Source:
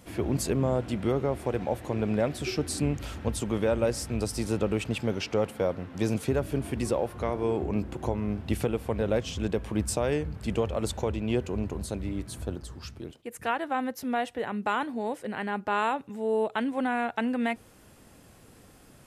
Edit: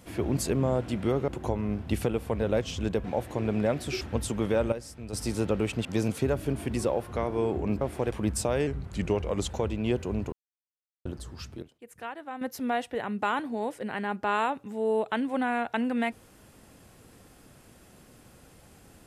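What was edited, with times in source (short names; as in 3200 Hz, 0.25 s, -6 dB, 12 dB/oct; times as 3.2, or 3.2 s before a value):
1.28–1.58 swap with 7.87–9.63
2.55–3.13 cut
3.84–4.25 gain -10.5 dB
4.97–5.91 cut
10.19–10.94 speed 90%
11.76–12.49 mute
13.06–13.85 gain -9.5 dB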